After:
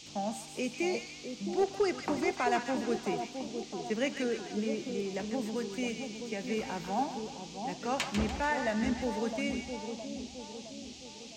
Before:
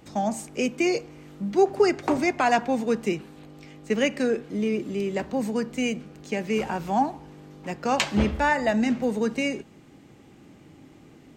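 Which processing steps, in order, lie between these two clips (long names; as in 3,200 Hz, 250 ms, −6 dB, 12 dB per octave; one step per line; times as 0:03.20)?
gain into a clipping stage and back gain 12 dB
echo with a time of its own for lows and highs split 960 Hz, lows 663 ms, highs 146 ms, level −6.5 dB
noise in a band 2,400–6,800 Hz −42 dBFS
level −9 dB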